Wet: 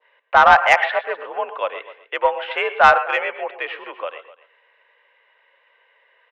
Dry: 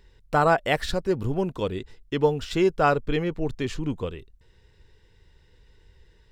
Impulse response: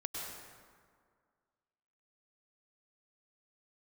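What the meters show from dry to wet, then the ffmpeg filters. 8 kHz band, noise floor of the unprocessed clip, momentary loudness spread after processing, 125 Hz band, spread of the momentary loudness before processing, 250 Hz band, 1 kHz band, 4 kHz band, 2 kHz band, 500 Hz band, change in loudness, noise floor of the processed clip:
can't be measured, −59 dBFS, 18 LU, below −15 dB, 11 LU, −16.0 dB, +11.0 dB, +5.5 dB, +13.0 dB, +2.0 dB, +8.0 dB, −61 dBFS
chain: -filter_complex "[0:a]highpass=frequency=600:width_type=q:width=0.5412,highpass=frequency=600:width_type=q:width=1.307,lowpass=frequency=2700:width_type=q:width=0.5176,lowpass=frequency=2700:width_type=q:width=0.7071,lowpass=frequency=2700:width_type=q:width=1.932,afreqshift=58,adynamicequalizer=threshold=0.0158:dfrequency=2100:dqfactor=0.76:tfrequency=2100:tqfactor=0.76:attack=5:release=100:ratio=0.375:range=2:mode=boostabove:tftype=bell,aecho=1:1:252:0.119,asplit=2[link_01][link_02];[1:a]atrim=start_sample=2205,atrim=end_sample=6174[link_03];[link_02][link_03]afir=irnorm=-1:irlink=0,volume=-2.5dB[link_04];[link_01][link_04]amix=inputs=2:normalize=0,acontrast=81"

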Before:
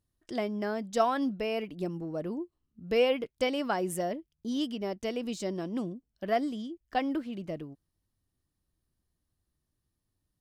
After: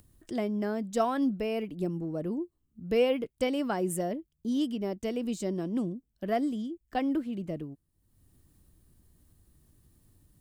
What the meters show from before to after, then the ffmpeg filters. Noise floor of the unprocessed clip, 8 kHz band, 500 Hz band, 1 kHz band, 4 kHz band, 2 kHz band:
−83 dBFS, +1.5 dB, 0.0 dB, −2.0 dB, −3.5 dB, −3.0 dB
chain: -filter_complex "[0:a]highshelf=frequency=9600:gain=-5,acrossover=split=430|1400[link_01][link_02][link_03];[link_01]acontrast=70[link_04];[link_04][link_02][link_03]amix=inputs=3:normalize=0,aexciter=amount=2.2:drive=6.9:freq=7200,acompressor=mode=upward:threshold=-44dB:ratio=2.5,volume=-3dB"

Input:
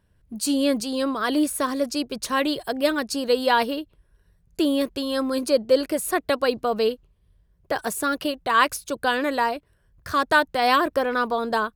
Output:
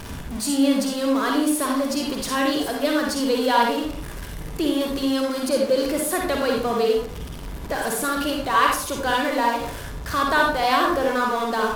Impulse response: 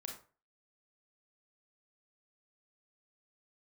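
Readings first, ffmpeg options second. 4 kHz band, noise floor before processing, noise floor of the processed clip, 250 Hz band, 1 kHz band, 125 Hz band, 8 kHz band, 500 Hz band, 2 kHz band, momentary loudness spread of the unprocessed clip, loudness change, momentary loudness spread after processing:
+1.0 dB, −63 dBFS, −34 dBFS, +2.5 dB, +1.5 dB, can't be measured, +3.5 dB, +0.5 dB, +0.5 dB, 8 LU, +1.5 dB, 11 LU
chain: -filter_complex "[0:a]aeval=exprs='val(0)+0.5*0.0501*sgn(val(0))':channel_layout=same[link_01];[1:a]atrim=start_sample=2205,asetrate=30870,aresample=44100[link_02];[link_01][link_02]afir=irnorm=-1:irlink=0"

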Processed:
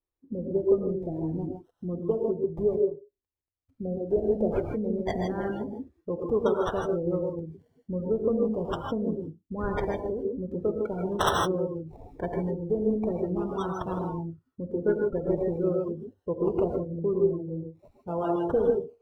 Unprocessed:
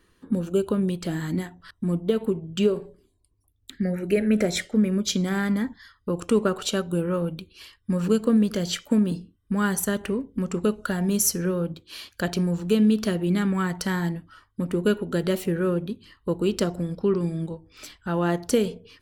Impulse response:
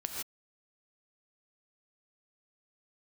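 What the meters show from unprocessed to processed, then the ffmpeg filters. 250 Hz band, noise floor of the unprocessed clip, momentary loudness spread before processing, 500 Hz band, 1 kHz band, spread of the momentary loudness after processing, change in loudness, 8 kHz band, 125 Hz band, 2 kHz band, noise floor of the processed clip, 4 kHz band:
−7.0 dB, −67 dBFS, 11 LU, +0.5 dB, +1.0 dB, 12 LU, −4.0 dB, −18.0 dB, −6.5 dB, −8.5 dB, −83 dBFS, −10.0 dB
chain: -filter_complex "[0:a]acrossover=split=740|1100[link_01][link_02][link_03];[link_03]acrusher=samples=27:mix=1:aa=0.000001:lfo=1:lforange=16.2:lforate=0.42[link_04];[link_01][link_02][link_04]amix=inputs=3:normalize=0[link_05];[1:a]atrim=start_sample=2205,afade=type=out:start_time=0.23:duration=0.01,atrim=end_sample=10584[link_06];[link_05][link_06]afir=irnorm=-1:irlink=0,afftdn=noise_reduction=28:noise_floor=-33,equalizer=frequency=210:width_type=o:width=0.96:gain=-11.5"

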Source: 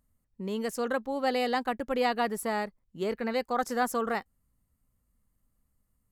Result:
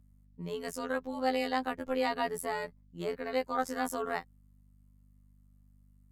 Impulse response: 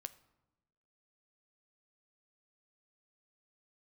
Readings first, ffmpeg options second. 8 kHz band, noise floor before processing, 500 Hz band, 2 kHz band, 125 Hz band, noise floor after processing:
−3.5 dB, −76 dBFS, −3.5 dB, −3.5 dB, −1.5 dB, −62 dBFS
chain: -af "afftfilt=real='hypot(re,im)*cos(PI*b)':imag='0':win_size=2048:overlap=0.75,aeval=exprs='val(0)+0.001*(sin(2*PI*50*n/s)+sin(2*PI*2*50*n/s)/2+sin(2*PI*3*50*n/s)/3+sin(2*PI*4*50*n/s)/4+sin(2*PI*5*50*n/s)/5)':channel_layout=same"

